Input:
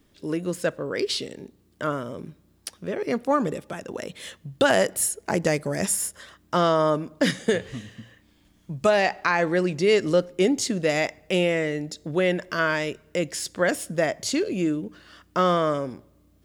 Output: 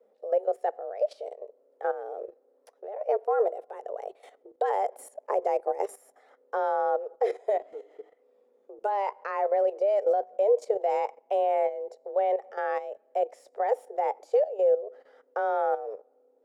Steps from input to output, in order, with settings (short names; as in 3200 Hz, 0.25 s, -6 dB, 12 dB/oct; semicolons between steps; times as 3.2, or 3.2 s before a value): frequency shift +200 Hz; level quantiser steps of 13 dB; EQ curve 110 Hz 0 dB, 330 Hz -12 dB, 470 Hz +11 dB, 3500 Hz -18 dB; gain -3.5 dB